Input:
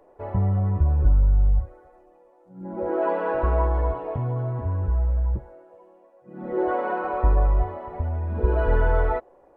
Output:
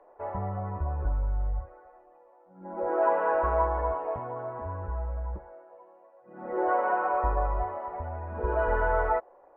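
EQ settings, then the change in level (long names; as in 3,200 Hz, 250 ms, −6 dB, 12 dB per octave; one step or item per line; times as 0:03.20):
three-way crossover with the lows and the highs turned down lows −15 dB, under 590 Hz, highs −20 dB, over 2,600 Hz
parametric band 120 Hz −12 dB 0.28 octaves
high-shelf EQ 2,300 Hz −10 dB
+4.5 dB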